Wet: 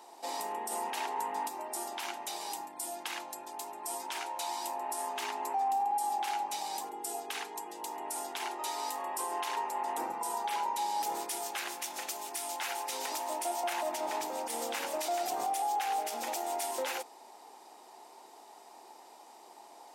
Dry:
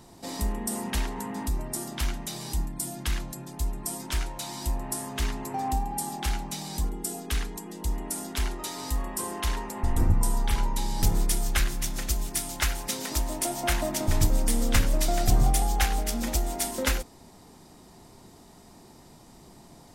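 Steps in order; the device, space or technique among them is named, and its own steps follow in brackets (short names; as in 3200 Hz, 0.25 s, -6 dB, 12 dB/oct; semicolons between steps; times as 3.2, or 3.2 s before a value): laptop speaker (HPF 370 Hz 24 dB/oct; bell 840 Hz +11.5 dB 0.53 oct; bell 2600 Hz +4 dB 0.5 oct; limiter -21.5 dBFS, peak gain reduction 12.5 dB); 13.96–14.5 high shelf 5900 Hz -6 dB; gain -3.5 dB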